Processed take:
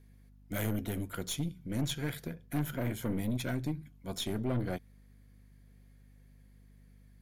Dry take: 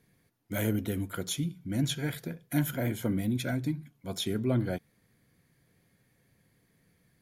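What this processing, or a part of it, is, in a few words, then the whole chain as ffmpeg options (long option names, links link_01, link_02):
valve amplifier with mains hum: -filter_complex "[0:a]aeval=exprs='(tanh(22.4*val(0)+0.55)-tanh(0.55))/22.4':channel_layout=same,aeval=exprs='val(0)+0.00141*(sin(2*PI*50*n/s)+sin(2*PI*2*50*n/s)/2+sin(2*PI*3*50*n/s)/3+sin(2*PI*4*50*n/s)/4+sin(2*PI*5*50*n/s)/5)':channel_layout=same,asettb=1/sr,asplit=3[link_01][link_02][link_03];[link_01]atrim=end=2.344[link_04];[link_02]atrim=start=2.34:end=2.91,asetpts=PTS-STARTPTS,afade=type=in:duration=0.004:curve=qsin,afade=type=out:start_time=0.566:duration=0.004:curve=qsin,highshelf=frequency=4400:gain=-5.5[link_05];[link_03]atrim=start=2.906[link_06];[link_04][link_05]acrossfade=duration=0.004:curve1=hsin:curve2=qsin[link_07];[link_07][link_06]acrossfade=duration=0.004:curve1=qsin:curve2=hsin"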